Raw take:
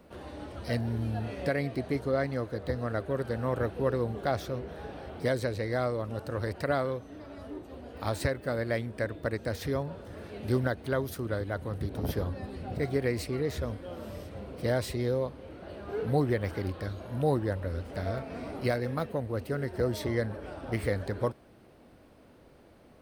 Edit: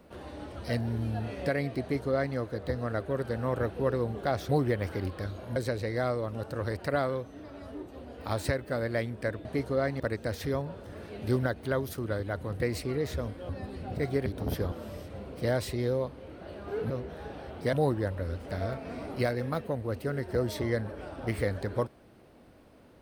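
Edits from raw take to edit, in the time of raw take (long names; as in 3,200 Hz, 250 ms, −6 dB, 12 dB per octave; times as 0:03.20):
0:01.81–0:02.36: duplicate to 0:09.21
0:04.49–0:05.32: swap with 0:16.11–0:17.18
0:11.83–0:12.29: swap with 0:13.06–0:13.93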